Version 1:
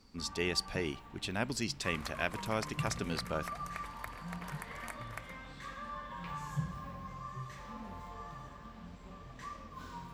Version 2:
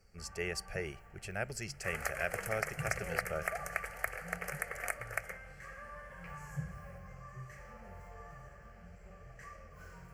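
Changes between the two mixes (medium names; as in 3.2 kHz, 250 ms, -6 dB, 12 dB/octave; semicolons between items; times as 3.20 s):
second sound +11.0 dB; master: add static phaser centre 1 kHz, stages 6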